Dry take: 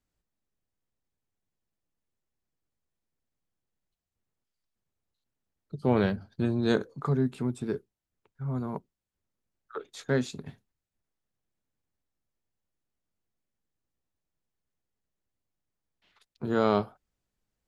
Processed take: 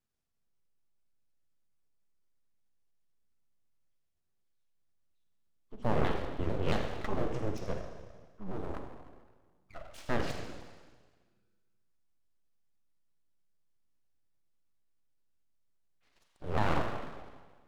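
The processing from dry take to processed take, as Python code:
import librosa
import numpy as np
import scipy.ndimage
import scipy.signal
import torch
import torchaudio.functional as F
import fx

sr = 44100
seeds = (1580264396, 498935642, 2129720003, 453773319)

p1 = fx.pitch_ramps(x, sr, semitones=-7.5, every_ms=224)
p2 = p1 + fx.echo_single(p1, sr, ms=82, db=-14.5, dry=0)
p3 = fx.rev_schroeder(p2, sr, rt60_s=1.5, comb_ms=33, drr_db=3.0)
p4 = np.abs(p3)
y = p4 * 10.0 ** (-2.5 / 20.0)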